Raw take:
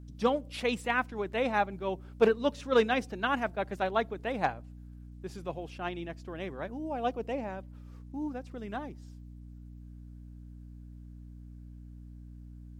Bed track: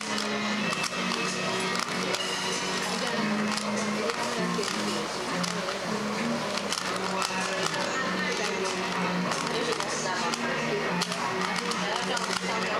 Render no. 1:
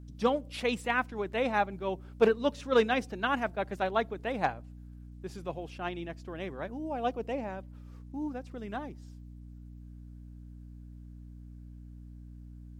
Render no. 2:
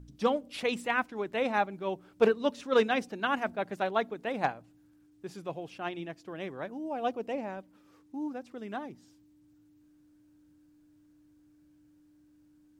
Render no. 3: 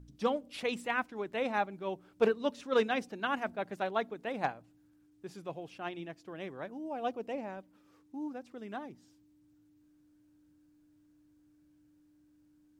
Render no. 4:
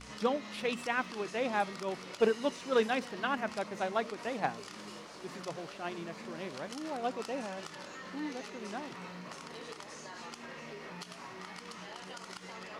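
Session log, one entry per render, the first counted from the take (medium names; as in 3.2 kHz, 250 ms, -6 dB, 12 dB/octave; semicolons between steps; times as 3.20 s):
no audible change
de-hum 60 Hz, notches 4
trim -3.5 dB
add bed track -17.5 dB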